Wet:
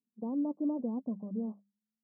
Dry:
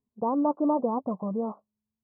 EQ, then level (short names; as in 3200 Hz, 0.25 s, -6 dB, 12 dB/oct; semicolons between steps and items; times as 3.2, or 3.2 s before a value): ladder band-pass 260 Hz, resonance 45%; air absorption 460 m; notches 50/100/150/200 Hz; +3.5 dB